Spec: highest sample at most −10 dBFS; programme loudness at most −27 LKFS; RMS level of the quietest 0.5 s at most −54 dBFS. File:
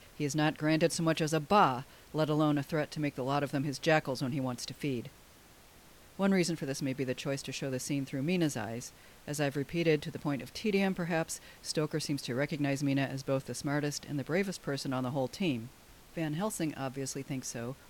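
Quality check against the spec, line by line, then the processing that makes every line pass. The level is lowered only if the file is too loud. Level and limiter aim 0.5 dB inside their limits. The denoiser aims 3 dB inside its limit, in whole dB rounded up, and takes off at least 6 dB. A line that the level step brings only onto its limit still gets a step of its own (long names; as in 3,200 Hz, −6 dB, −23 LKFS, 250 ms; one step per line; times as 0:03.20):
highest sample −13.5 dBFS: in spec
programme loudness −33.0 LKFS: in spec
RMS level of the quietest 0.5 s −58 dBFS: in spec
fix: no processing needed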